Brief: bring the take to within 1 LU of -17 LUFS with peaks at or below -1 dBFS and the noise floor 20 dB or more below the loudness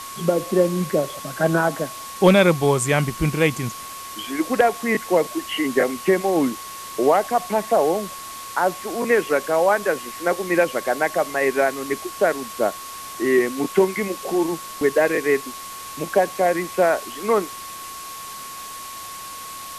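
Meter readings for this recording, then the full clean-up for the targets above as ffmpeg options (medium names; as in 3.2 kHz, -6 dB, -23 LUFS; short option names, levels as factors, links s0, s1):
steady tone 1.1 kHz; tone level -35 dBFS; noise floor -35 dBFS; noise floor target -41 dBFS; loudness -21.0 LUFS; peak level -4.0 dBFS; loudness target -17.0 LUFS
-> -af "bandreject=f=1100:w=30"
-af "afftdn=nr=6:nf=-35"
-af "volume=1.58,alimiter=limit=0.891:level=0:latency=1"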